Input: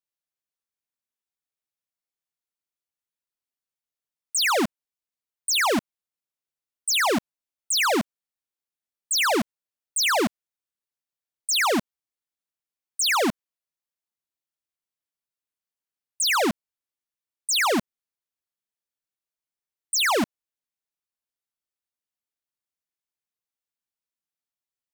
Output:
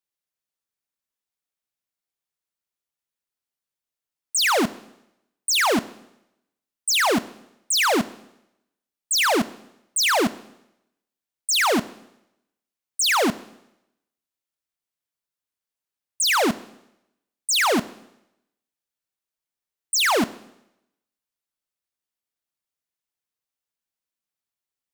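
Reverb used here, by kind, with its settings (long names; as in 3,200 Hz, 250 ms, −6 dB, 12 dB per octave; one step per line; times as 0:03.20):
four-comb reverb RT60 0.84 s, combs from 25 ms, DRR 16.5 dB
level +2 dB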